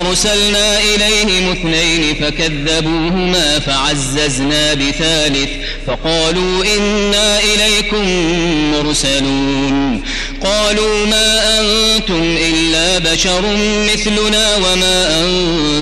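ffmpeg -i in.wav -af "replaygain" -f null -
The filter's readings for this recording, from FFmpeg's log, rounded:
track_gain = -8.2 dB
track_peak = 0.567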